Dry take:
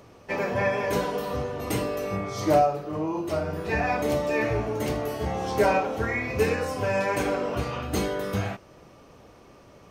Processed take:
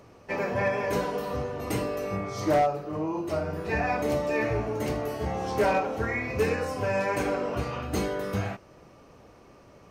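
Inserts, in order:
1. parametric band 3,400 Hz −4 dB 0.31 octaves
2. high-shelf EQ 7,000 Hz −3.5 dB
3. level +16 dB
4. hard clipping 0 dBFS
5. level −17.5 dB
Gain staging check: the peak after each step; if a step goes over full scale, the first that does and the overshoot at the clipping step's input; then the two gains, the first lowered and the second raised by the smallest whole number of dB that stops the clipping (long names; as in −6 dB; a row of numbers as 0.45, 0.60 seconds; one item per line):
−10.5, −10.5, +5.5, 0.0, −17.5 dBFS
step 3, 5.5 dB
step 3 +10 dB, step 5 −11.5 dB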